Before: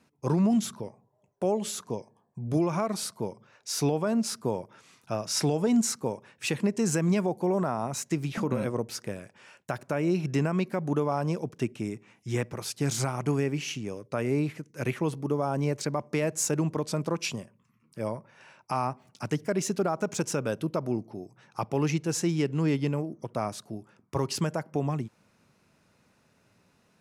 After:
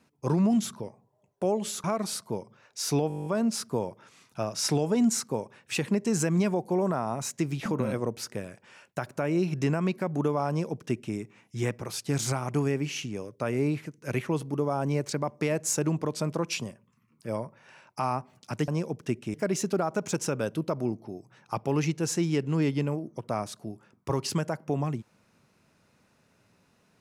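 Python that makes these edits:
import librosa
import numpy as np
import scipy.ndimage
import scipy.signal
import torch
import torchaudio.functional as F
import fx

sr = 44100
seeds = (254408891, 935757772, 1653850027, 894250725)

y = fx.edit(x, sr, fx.cut(start_s=1.84, length_s=0.9),
    fx.stutter(start_s=3.98, slice_s=0.02, count=10),
    fx.duplicate(start_s=11.21, length_s=0.66, to_s=19.4), tone=tone)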